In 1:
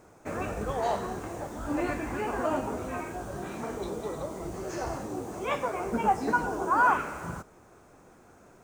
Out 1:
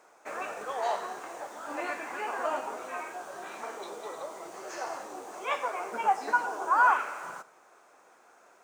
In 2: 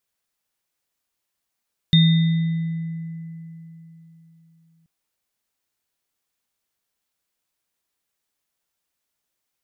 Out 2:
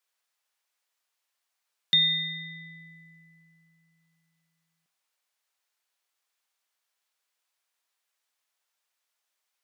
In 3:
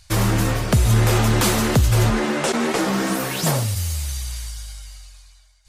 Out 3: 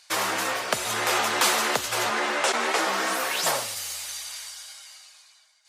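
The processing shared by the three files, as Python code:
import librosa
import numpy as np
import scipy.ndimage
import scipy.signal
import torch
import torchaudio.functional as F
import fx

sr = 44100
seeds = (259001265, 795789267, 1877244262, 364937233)

y = scipy.signal.sosfilt(scipy.signal.butter(2, 690.0, 'highpass', fs=sr, output='sos'), x)
y = fx.high_shelf(y, sr, hz=8600.0, db=-7.0)
y = fx.echo_feedback(y, sr, ms=88, feedback_pct=42, wet_db=-20.5)
y = y * librosa.db_to_amplitude(1.5)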